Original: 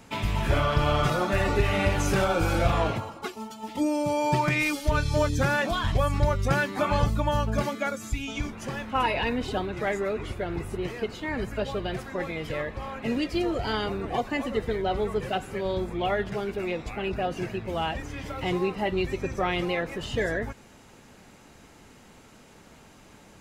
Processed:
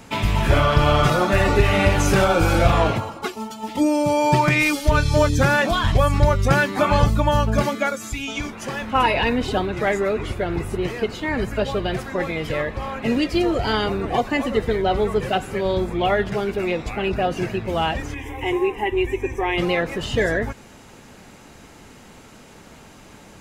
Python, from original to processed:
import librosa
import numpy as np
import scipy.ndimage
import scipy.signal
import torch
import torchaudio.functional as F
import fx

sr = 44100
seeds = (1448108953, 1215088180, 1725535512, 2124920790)

y = fx.low_shelf(x, sr, hz=200.0, db=-9.0, at=(7.86, 8.82))
y = fx.fixed_phaser(y, sr, hz=900.0, stages=8, at=(18.14, 19.58))
y = y * librosa.db_to_amplitude(7.0)